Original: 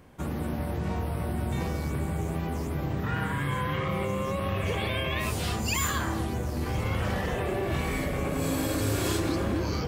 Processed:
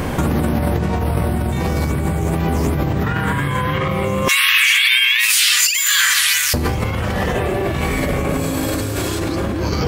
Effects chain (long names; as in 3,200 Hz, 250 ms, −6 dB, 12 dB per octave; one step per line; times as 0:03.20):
0:04.28–0:06.54: inverse Chebyshev high-pass filter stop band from 720 Hz, stop band 50 dB
compressor whose output falls as the input rises −40 dBFS, ratio −1
boost into a limiter +26.5 dB
level −3.5 dB